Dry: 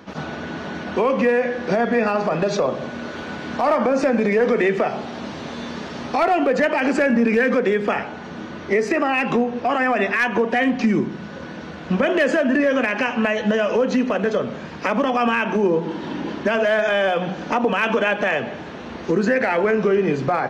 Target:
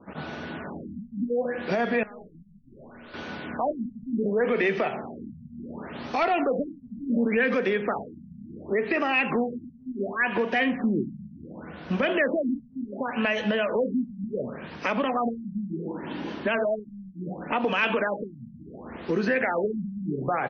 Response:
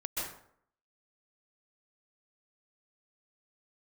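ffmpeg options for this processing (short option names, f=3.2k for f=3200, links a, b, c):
-filter_complex "[0:a]adynamicequalizer=threshold=0.0112:dfrequency=2800:dqfactor=1.1:tfrequency=2800:tqfactor=1.1:attack=5:release=100:ratio=0.375:range=3:mode=boostabove:tftype=bell,asettb=1/sr,asplit=3[a][b][c];[a]atrim=end=2.034[d];[b]atrim=start=2.03:end=3.14,asetpts=PTS-STARTPTS,afade=t=in:d=0.004:c=qsin,afade=t=out:st=1.106:d=0.004:c=qsin,aeval=exprs='(tanh(79.4*val(0)+0.15)-tanh(0.15))/79.4':c=same[e];[c]atrim=start=3.136[f];[d][e]acrossfade=d=0.004:c1=hsin:c2=qsin[g];[g][f]acrossfade=d=0.004:c1=qsin:c2=hsin,asplit=2[h][i];[i]aecho=0:1:190:0.0794[j];[h][j]amix=inputs=2:normalize=0,afftfilt=real='re*lt(b*sr/1024,230*pow(6700/230,0.5+0.5*sin(2*PI*0.69*pts/sr)))':imag='im*lt(b*sr/1024,230*pow(6700/230,0.5+0.5*sin(2*PI*0.69*pts/sr)))':win_size=1024:overlap=0.75,volume=-6.5dB"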